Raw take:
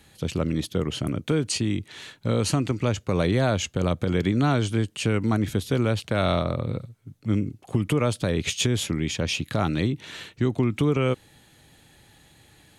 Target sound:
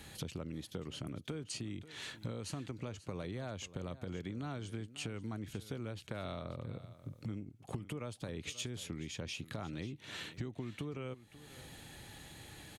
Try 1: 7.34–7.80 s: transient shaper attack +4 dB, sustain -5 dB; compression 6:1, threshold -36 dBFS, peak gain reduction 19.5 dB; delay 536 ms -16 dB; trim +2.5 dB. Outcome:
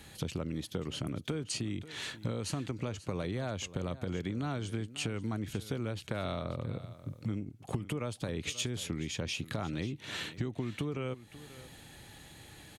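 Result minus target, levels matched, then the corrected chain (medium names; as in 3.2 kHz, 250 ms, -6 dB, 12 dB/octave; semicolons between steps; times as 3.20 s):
compression: peak gain reduction -6 dB
7.34–7.80 s: transient shaper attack +4 dB, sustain -5 dB; compression 6:1, threshold -43.5 dBFS, peak gain reduction 26 dB; delay 536 ms -16 dB; trim +2.5 dB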